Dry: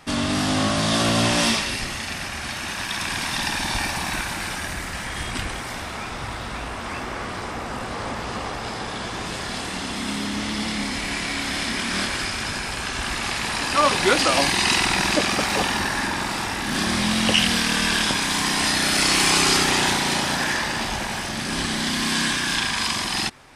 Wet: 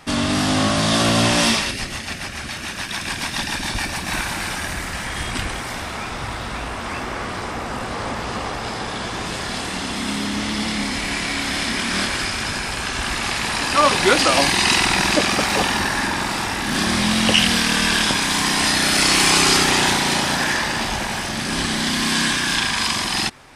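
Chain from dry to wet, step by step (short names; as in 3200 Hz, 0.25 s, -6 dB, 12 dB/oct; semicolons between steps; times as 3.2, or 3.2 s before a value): 1.71–4.1 rotary speaker horn 7 Hz; gain +3 dB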